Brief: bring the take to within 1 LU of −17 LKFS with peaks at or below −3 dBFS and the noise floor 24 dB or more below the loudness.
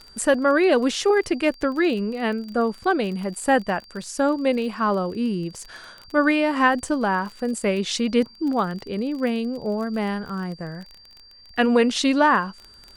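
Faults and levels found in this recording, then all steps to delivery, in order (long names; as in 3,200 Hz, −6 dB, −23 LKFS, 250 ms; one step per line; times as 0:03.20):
crackle rate 29 per second; interfering tone 4,700 Hz; level of the tone −47 dBFS; integrated loudness −22.5 LKFS; sample peak −5.0 dBFS; target loudness −17.0 LKFS
→ click removal
notch filter 4,700 Hz, Q 30
level +5.5 dB
brickwall limiter −3 dBFS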